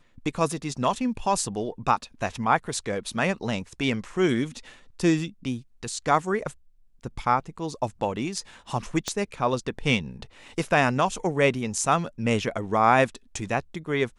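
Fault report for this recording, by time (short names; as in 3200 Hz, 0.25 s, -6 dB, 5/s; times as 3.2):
9.08 pop -13 dBFS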